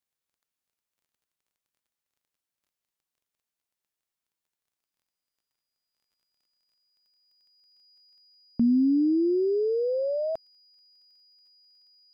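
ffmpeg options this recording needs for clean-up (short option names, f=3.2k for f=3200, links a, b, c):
-af "adeclick=t=4,bandreject=f=4.9k:w=30"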